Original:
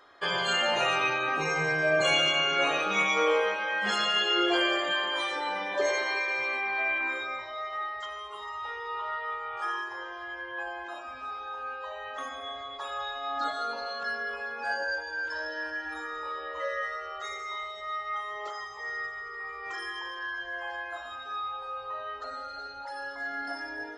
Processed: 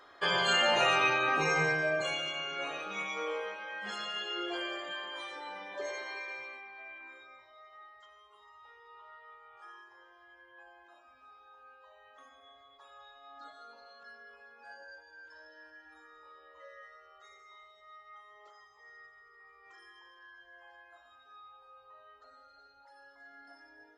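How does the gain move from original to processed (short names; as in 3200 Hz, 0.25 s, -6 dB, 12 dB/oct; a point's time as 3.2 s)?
1.62 s 0 dB
2.17 s -11.5 dB
6.32 s -11.5 dB
6.73 s -19.5 dB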